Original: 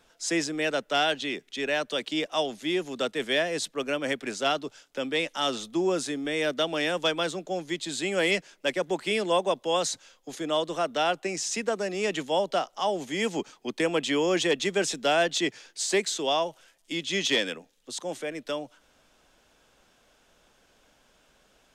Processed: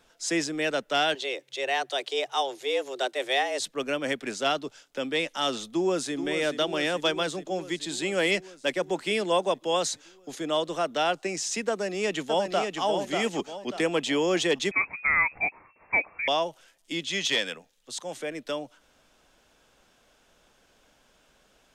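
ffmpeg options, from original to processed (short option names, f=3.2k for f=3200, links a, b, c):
-filter_complex "[0:a]asettb=1/sr,asplit=3[a][b][c];[a]atrim=end=1.154[d];[b]atrim=start=1.15:end=3.6,asetpts=PTS-STARTPTS,afade=t=in:d=0.004:c=qsin,afade=t=out:st=2.446:d=0.004:c=qsin,afreqshift=130[e];[c]atrim=start=3.596[f];[d][e]acrossfade=d=0.004:c1=hsin:c2=qsin[g];[g][f]acrossfade=d=0.004:c1=qsin:c2=hsin,asplit=2[h][i];[i]afade=t=in:st=5.67:d=0.01,afade=t=out:st=6.14:d=0.01,aecho=0:1:430|860|1290|1720|2150|2580|3010|3440|3870|4300|4730|5160:0.316228|0.237171|0.177878|0.133409|0.100056|0.0750423|0.0562817|0.0422113|0.0316585|0.0237439|0.0178079|0.0133559[j];[h][j]amix=inputs=2:normalize=0,asplit=2[k][l];[l]afade=t=in:st=11.7:d=0.01,afade=t=out:st=12.81:d=0.01,aecho=0:1:590|1180|1770|2360:0.595662|0.208482|0.0729686|0.025539[m];[k][m]amix=inputs=2:normalize=0,asettb=1/sr,asplit=3[n][o][p];[n]atrim=end=14.714[q];[o]atrim=start=14.71:end=16.28,asetpts=PTS-STARTPTS,afade=t=in:d=0.004:c=qsin,afade=t=out:st=1.566:d=0.004:c=qsin,lowpass=f=2.3k:t=q:w=0.5098,lowpass=f=2.3k:t=q:w=0.6013,lowpass=f=2.3k:t=q:w=0.9,lowpass=f=2.3k:t=q:w=2.563,afreqshift=-2700[r];[p]atrim=start=16.276[s];[q][r]acrossfade=d=0.004:c1=hsin:c2=qsin[t];[t][s]acrossfade=d=0.004:c1=qsin:c2=hsin,asettb=1/sr,asplit=3[u][v][w];[u]atrim=end=17.094[x];[v]atrim=start=17.09:end=18.17,asetpts=PTS-STARTPTS,afade=t=in:d=0.004:c=qsin,afade=t=out:st=1.076:d=0.004:c=qsin,equalizer=f=300:t=o:w=1.2:g=-7.5[y];[w]atrim=start=18.166[z];[x][y]acrossfade=d=0.004:c1=hsin:c2=qsin[aa];[aa][z]acrossfade=d=0.004:c1=qsin:c2=hsin"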